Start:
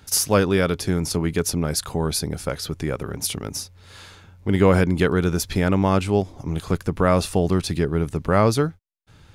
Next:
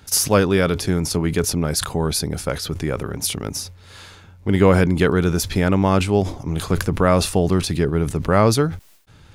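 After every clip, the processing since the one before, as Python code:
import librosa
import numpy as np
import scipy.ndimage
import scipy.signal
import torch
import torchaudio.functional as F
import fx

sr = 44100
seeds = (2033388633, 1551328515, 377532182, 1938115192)

y = fx.sustainer(x, sr, db_per_s=110.0)
y = y * 10.0 ** (2.0 / 20.0)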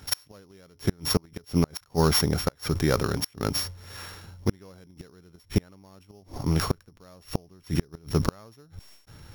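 y = np.r_[np.sort(x[:len(x) // 8 * 8].reshape(-1, 8), axis=1).ravel(), x[len(x) // 8 * 8:]]
y = fx.gate_flip(y, sr, shuts_db=-10.0, range_db=-35)
y = fx.dynamic_eq(y, sr, hz=1300.0, q=1.2, threshold_db=-48.0, ratio=4.0, max_db=4)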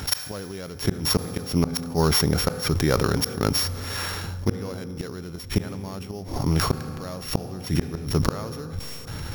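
y = fx.rev_fdn(x, sr, rt60_s=2.3, lf_ratio=1.0, hf_ratio=0.65, size_ms=12.0, drr_db=19.5)
y = fx.env_flatten(y, sr, amount_pct=50)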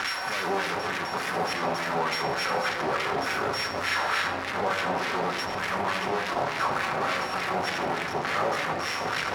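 y = np.sign(x) * np.sqrt(np.mean(np.square(x)))
y = fx.filter_lfo_bandpass(y, sr, shape='sine', hz=3.4, low_hz=720.0, high_hz=2100.0, q=1.9)
y = fx.room_shoebox(y, sr, seeds[0], volume_m3=900.0, walls='mixed', distance_m=1.1)
y = y * 10.0 ** (7.5 / 20.0)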